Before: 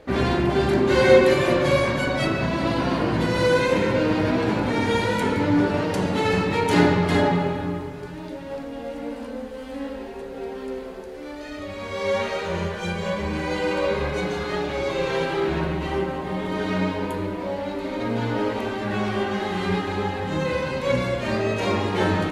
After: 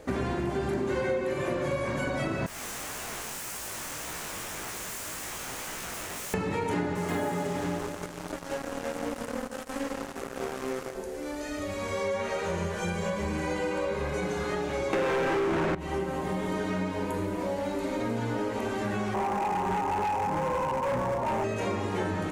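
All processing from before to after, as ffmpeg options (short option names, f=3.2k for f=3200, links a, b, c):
-filter_complex "[0:a]asettb=1/sr,asplit=3[a][b][c];[a]atrim=end=2.464[d];[b]atrim=start=2.46:end=6.34,asetpts=PTS-STARTPTS,afade=t=in:d=0.004:c=qsin,afade=t=out:st=3.876:d=0.004:c=qsin,highpass=f=740:p=1,aeval=exprs='(mod(25.1*val(0)+1,2)-1)/25.1':c=same,flanger=delay=16:depth=7:speed=1.8[e];[c]atrim=start=6.336[f];[d][e]acrossfade=d=0.004:c1=hsin:c2=qsin[g];[g][f]acrossfade=d=0.004:c1=qsin:c2=hsin,asettb=1/sr,asplit=3[h][i][j];[h]atrim=end=6.954[k];[i]atrim=start=6.95:end=10.95,asetpts=PTS-STARTPTS,afade=t=in:d=0.004:c=qsin,afade=t=out:st=3.996:d=0.004:c=qsin,highpass=f=160:p=1,acrusher=bits=4:mix=0:aa=0.5,aecho=1:1:167|334|501|668|835:0.237|0.123|0.0641|0.0333|0.0173,atrim=end_sample=176400[l];[j]atrim=start=10.946[m];[k][l]acrossfade=d=0.004:c1=hsin:c2=qsin[n];[n][m]acrossfade=d=0.004:c1=qsin:c2=hsin,asettb=1/sr,asplit=3[o][p][q];[o]atrim=end=14.934[r];[p]atrim=start=14.93:end=15.75,asetpts=PTS-STARTPTS,afade=t=in:d=0.004:c=qsin,afade=t=out:st=0.816:d=0.004:c=qsin,equalizer=f=250:t=o:w=1.8:g=10,asplit=2[s][t];[t]highpass=f=720:p=1,volume=34dB,asoftclip=type=tanh:threshold=-6.5dB[u];[s][u]amix=inputs=2:normalize=0,lowpass=f=6.1k:p=1,volume=-6dB[v];[q]atrim=start=15.746[w];[r][v]acrossfade=d=0.004:c1=hsin:c2=qsin[x];[x][w]acrossfade=d=0.004:c1=qsin:c2=hsin,asettb=1/sr,asplit=3[y][z][aa];[y]atrim=end=19.144[ab];[z]atrim=start=19.14:end=21.44,asetpts=PTS-STARTPTS,afade=t=in:d=0.004:c=qsin,afade=t=out:st=2.296:d=0.004:c=qsin,lowpass=f=920:t=q:w=8.6,asoftclip=type=hard:threshold=-20dB[ac];[aa]atrim=start=21.436[ad];[ab][ac]acrossfade=d=0.004:c1=hsin:c2=qsin[ae];[ae][ad]acrossfade=d=0.004:c1=qsin:c2=hsin,acrossover=split=3100[af][ag];[ag]acompressor=threshold=-44dB:ratio=4:attack=1:release=60[ah];[af][ah]amix=inputs=2:normalize=0,highshelf=f=5.3k:t=q:w=1.5:g=8,acompressor=threshold=-27dB:ratio=6"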